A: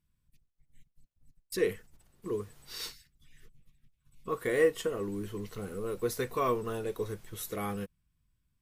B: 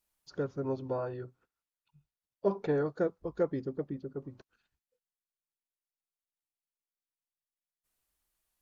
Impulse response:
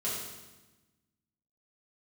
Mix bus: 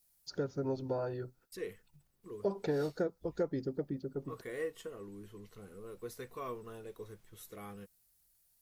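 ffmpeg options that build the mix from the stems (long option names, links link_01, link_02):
-filter_complex "[0:a]volume=-12.5dB[link_01];[1:a]bandreject=frequency=1100:width=5.9,aexciter=amount=2.8:drive=3.9:freq=4200,volume=0.5dB,asplit=3[link_02][link_03][link_04];[link_02]atrim=end=4.95,asetpts=PTS-STARTPTS,afade=type=out:start_time=4.946:duration=0.004:curve=hsin[link_05];[link_03]atrim=start=4.95:end=5.8,asetpts=PTS-STARTPTS,volume=0[link_06];[link_04]atrim=start=5.8,asetpts=PTS-STARTPTS,afade=type=in:duration=0.004:curve=hsin[link_07];[link_05][link_06][link_07]concat=n=3:v=0:a=1[link_08];[link_01][link_08]amix=inputs=2:normalize=0,acompressor=threshold=-31dB:ratio=2.5"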